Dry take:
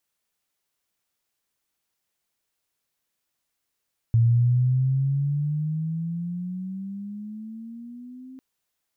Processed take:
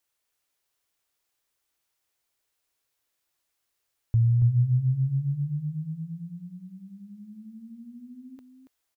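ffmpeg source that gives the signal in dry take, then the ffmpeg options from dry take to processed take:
-f lavfi -i "aevalsrc='pow(10,(-14.5-25*t/4.25)/20)*sin(2*PI*114*4.25/(14.5*log(2)/12)*(exp(14.5*log(2)/12*t/4.25)-1))':d=4.25:s=44100"
-af "equalizer=f=190:t=o:w=0.57:g=-12,aecho=1:1:280:0.447"

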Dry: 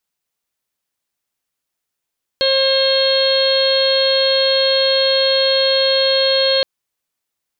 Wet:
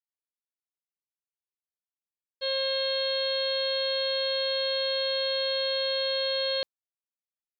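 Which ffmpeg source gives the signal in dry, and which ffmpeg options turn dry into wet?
-f lavfi -i "aevalsrc='0.178*sin(2*PI*536*t)+0.0266*sin(2*PI*1072*t)+0.0473*sin(2*PI*1608*t)+0.0251*sin(2*PI*2144*t)+0.0282*sin(2*PI*2680*t)+0.0891*sin(2*PI*3216*t)+0.0562*sin(2*PI*3752*t)+0.141*sin(2*PI*4288*t)':d=4.22:s=44100"
-af "alimiter=limit=-18dB:level=0:latency=1:release=17,agate=range=-33dB:threshold=-21dB:ratio=3:detection=peak"

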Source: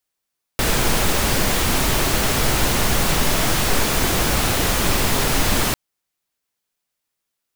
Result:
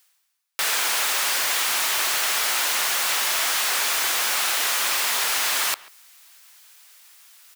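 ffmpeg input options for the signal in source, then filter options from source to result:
-f lavfi -i "anoisesrc=c=pink:a=0.646:d=5.15:r=44100:seed=1"
-filter_complex "[0:a]highpass=1.1k,areverse,acompressor=mode=upward:threshold=-27dB:ratio=2.5,areverse,asplit=2[a][b];[b]adelay=140,highpass=300,lowpass=3.4k,asoftclip=type=hard:threshold=-22dB,volume=-19dB[c];[a][c]amix=inputs=2:normalize=0"

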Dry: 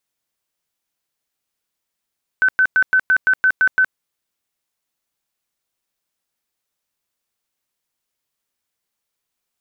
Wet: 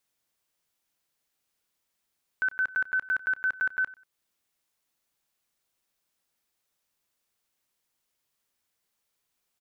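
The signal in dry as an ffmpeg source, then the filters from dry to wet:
-f lavfi -i "aevalsrc='0.299*sin(2*PI*1520*mod(t,0.17))*lt(mod(t,0.17),100/1520)':d=1.53:s=44100"
-af "alimiter=limit=-22dB:level=0:latency=1:release=380,aecho=1:1:94|188:0.1|0.023"

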